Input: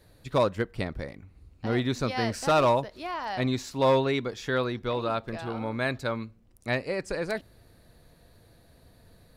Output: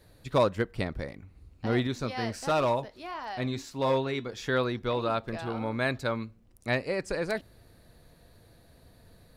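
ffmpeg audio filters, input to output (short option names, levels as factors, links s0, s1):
-filter_complex "[0:a]asettb=1/sr,asplit=3[s0][s1][s2];[s0]atrim=end=1.874[s3];[s1]atrim=start=1.87:end=4.34,asetpts=PTS-STARTPTS,afade=t=in:d=0.004:c=qsin,afade=t=out:st=2.466:d=0.004:c=qsin,flanger=delay=6.5:depth=3.2:regen=-74:speed=1.5:shape=triangular[s4];[s2]atrim=start=4.336[s5];[s3][s4]acrossfade=d=0.004:c1=hsin:c2=qsin[s6];[s6][s5]acrossfade=d=0.004:c1=qsin:c2=hsin"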